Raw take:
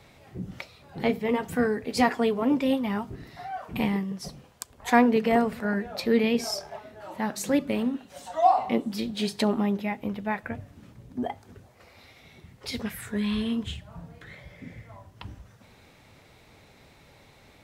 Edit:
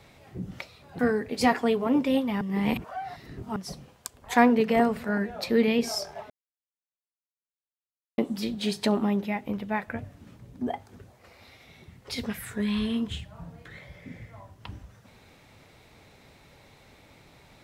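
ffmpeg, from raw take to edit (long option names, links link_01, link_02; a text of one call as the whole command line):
ffmpeg -i in.wav -filter_complex "[0:a]asplit=6[link_01][link_02][link_03][link_04][link_05][link_06];[link_01]atrim=end=0.992[link_07];[link_02]atrim=start=1.548:end=2.972[link_08];[link_03]atrim=start=2.968:end=4.122,asetpts=PTS-STARTPTS,areverse[link_09];[link_04]atrim=start=4.118:end=6.86,asetpts=PTS-STARTPTS,afade=type=out:start_time=2.738:duration=0.004:curve=hsin[link_10];[link_05]atrim=start=6.86:end=8.74,asetpts=PTS-STARTPTS,volume=0[link_11];[link_06]atrim=start=8.74,asetpts=PTS-STARTPTS,afade=type=in:duration=0.004:curve=hsin[link_12];[link_07][link_08]acrossfade=duration=0.004:curve1=hsin:curve2=hsin[link_13];[link_13][link_09]acrossfade=duration=0.004:curve1=hsin:curve2=hsin[link_14];[link_10][link_11][link_12]concat=n=3:v=0:a=1[link_15];[link_14][link_15]acrossfade=duration=0.004:curve1=hsin:curve2=hsin" out.wav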